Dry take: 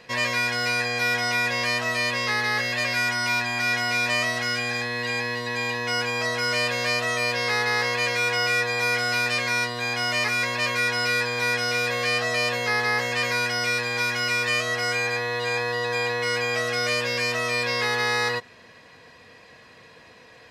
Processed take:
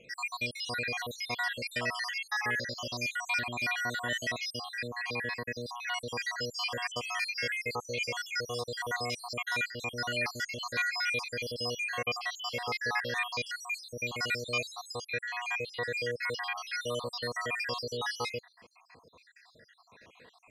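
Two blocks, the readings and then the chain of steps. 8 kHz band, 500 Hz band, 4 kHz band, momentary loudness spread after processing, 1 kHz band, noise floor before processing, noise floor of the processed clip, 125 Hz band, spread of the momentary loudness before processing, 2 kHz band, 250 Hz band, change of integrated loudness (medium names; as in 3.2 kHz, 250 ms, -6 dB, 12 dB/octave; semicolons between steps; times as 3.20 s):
-10.0 dB, -10.0 dB, -10.0 dB, 5 LU, -10.0 dB, -50 dBFS, -62 dBFS, -10.0 dB, 3 LU, -10.5 dB, -10.0 dB, -10.0 dB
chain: random holes in the spectrogram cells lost 70%; trim -4.5 dB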